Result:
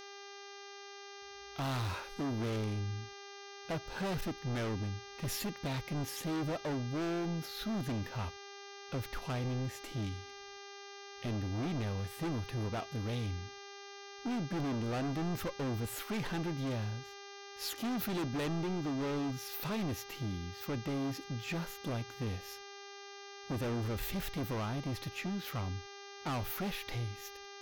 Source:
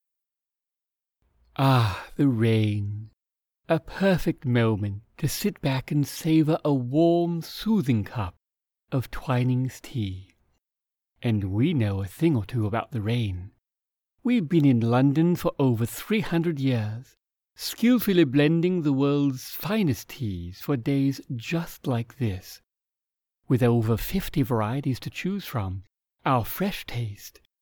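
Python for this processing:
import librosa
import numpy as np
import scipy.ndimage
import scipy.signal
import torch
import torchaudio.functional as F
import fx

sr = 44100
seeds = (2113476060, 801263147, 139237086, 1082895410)

y = np.clip(x, -10.0 ** (-26.5 / 20.0), 10.0 ** (-26.5 / 20.0))
y = fx.dmg_buzz(y, sr, base_hz=400.0, harmonics=16, level_db=-43.0, tilt_db=-3, odd_only=False)
y = y * librosa.db_to_amplitude(-7.0)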